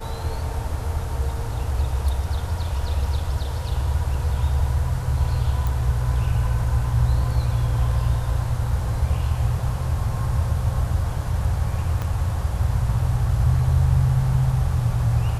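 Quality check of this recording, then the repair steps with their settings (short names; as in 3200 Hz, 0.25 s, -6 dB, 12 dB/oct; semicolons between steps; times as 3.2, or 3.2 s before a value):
5.67 pop
12.02 pop -15 dBFS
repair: de-click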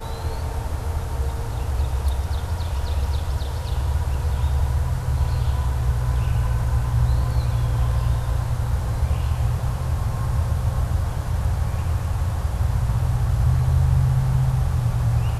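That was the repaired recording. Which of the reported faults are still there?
12.02 pop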